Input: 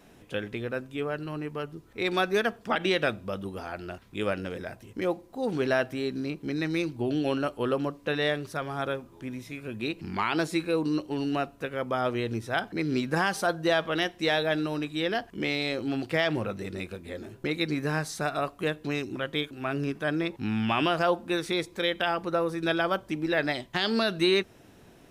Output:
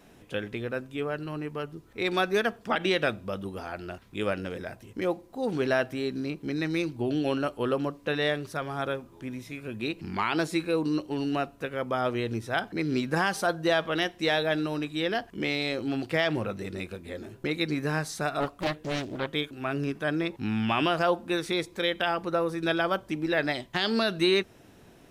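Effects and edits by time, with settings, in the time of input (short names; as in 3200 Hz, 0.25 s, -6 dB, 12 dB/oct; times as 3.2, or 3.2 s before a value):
18.4–19.29 Doppler distortion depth 0.92 ms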